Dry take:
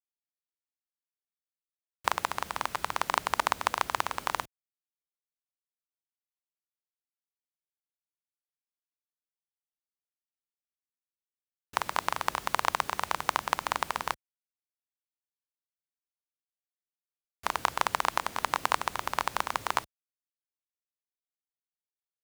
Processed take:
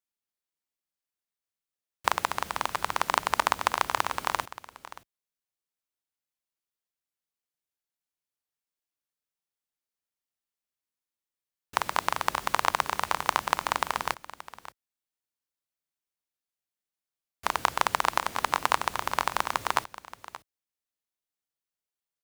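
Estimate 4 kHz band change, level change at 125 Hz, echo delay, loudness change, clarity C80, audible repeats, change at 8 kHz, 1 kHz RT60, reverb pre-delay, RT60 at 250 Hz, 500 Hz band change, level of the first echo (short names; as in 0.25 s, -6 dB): +2.5 dB, +2.5 dB, 0.577 s, +2.5 dB, none, 1, +2.5 dB, none, none, none, +2.5 dB, -16.0 dB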